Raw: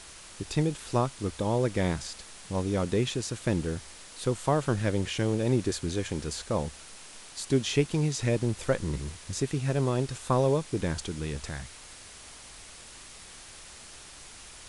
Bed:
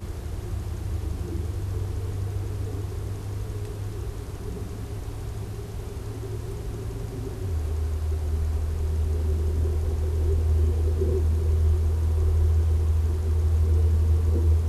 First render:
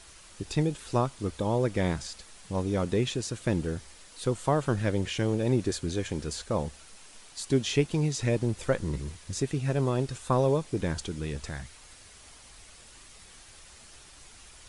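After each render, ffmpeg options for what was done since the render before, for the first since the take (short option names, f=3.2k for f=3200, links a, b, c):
-af "afftdn=nr=6:nf=-48"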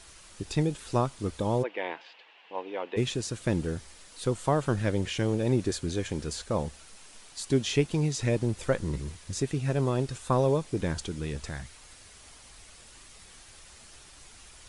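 -filter_complex "[0:a]asplit=3[a][b][c];[a]afade=t=out:st=1.62:d=0.02[d];[b]highpass=f=390:w=0.5412,highpass=f=390:w=1.3066,equalizer=f=400:t=q:w=4:g=-4,equalizer=f=590:t=q:w=4:g=-4,equalizer=f=900:t=q:w=4:g=4,equalizer=f=1.3k:t=q:w=4:g=-7,equalizer=f=2.8k:t=q:w=4:g=8,lowpass=f=3k:w=0.5412,lowpass=f=3k:w=1.3066,afade=t=in:st=1.62:d=0.02,afade=t=out:st=2.96:d=0.02[e];[c]afade=t=in:st=2.96:d=0.02[f];[d][e][f]amix=inputs=3:normalize=0"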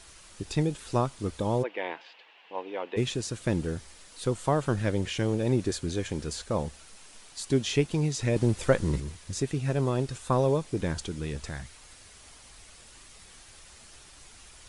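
-filter_complex "[0:a]asplit=3[a][b][c];[a]atrim=end=8.362[d];[b]atrim=start=8.358:end=9.002,asetpts=PTS-STARTPTS,volume=4dB[e];[c]atrim=start=8.998[f];[d][e]acrossfade=d=0.004:c1=hsin:c2=hsin[g];[g][f]acrossfade=d=0.004:c1=hsin:c2=hsin"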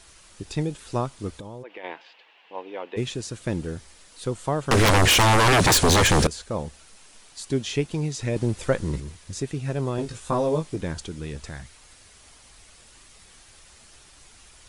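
-filter_complex "[0:a]asplit=3[a][b][c];[a]afade=t=out:st=1.38:d=0.02[d];[b]acompressor=threshold=-35dB:ratio=6:attack=3.2:release=140:knee=1:detection=peak,afade=t=in:st=1.38:d=0.02,afade=t=out:st=1.83:d=0.02[e];[c]afade=t=in:st=1.83:d=0.02[f];[d][e][f]amix=inputs=3:normalize=0,asettb=1/sr,asplit=3[g][h][i];[g]atrim=end=4.714[j];[h]atrim=start=4.71:end=6.27,asetpts=PTS-STARTPTS,afade=t=in:d=0.004:c=qsin,afade=t=out:st=1.556:d=0.004:c=qsin,aeval=exprs='0.211*sin(PI/2*8.91*val(0)/0.211)':c=same[k];[i]atrim=start=6.266[l];[j][k]acrossfade=d=0.004:c1=hsin:c2=qsin[m];[m][l]acrossfade=d=0.004:c1=qsin:c2=hsin,asettb=1/sr,asplit=3[n][o][p];[n]atrim=end=9.964[q];[o]atrim=start=9.96:end=10.76,asetpts=PTS-STARTPTS,afade=t=in:d=0.004:c=qsin,afade=t=out:st=0.796:d=0.004:c=qsin,asplit=2[r][s];[s]adelay=19,volume=-3dB[t];[r][t]amix=inputs=2:normalize=0,atrim=end_sample=35280[u];[p]atrim=start=10.756[v];[q][u]acrossfade=d=0.004:c1=hsin:c2=qsin[w];[w][v]acrossfade=d=0.004:c1=qsin:c2=hsin"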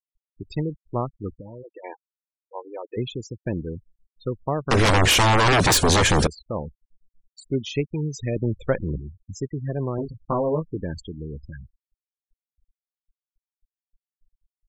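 -af "afftfilt=real='re*gte(hypot(re,im),0.0398)':imag='im*gte(hypot(re,im),0.0398)':win_size=1024:overlap=0.75"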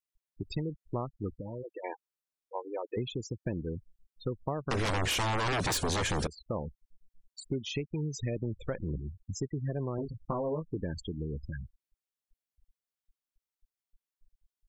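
-af "alimiter=limit=-16dB:level=0:latency=1:release=293,acompressor=threshold=-32dB:ratio=3"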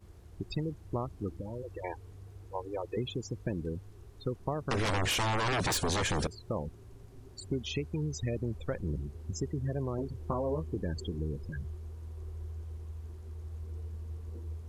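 -filter_complex "[1:a]volume=-20dB[a];[0:a][a]amix=inputs=2:normalize=0"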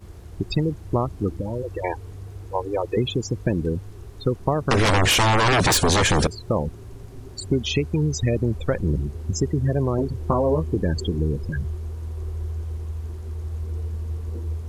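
-af "volume=12dB"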